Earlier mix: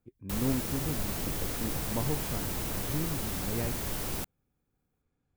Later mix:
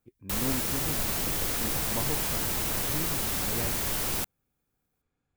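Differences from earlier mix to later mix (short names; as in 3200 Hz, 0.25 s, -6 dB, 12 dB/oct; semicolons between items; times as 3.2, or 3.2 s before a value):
background +3.5 dB; master: add tilt shelf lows -3.5 dB, about 660 Hz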